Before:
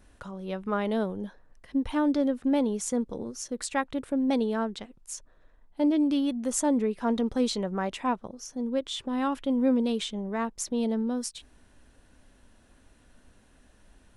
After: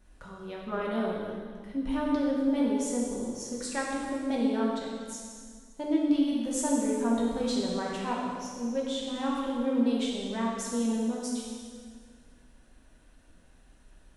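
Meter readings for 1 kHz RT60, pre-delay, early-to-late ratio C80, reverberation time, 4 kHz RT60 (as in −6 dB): 1.8 s, 3 ms, 1.0 dB, 1.9 s, 1.8 s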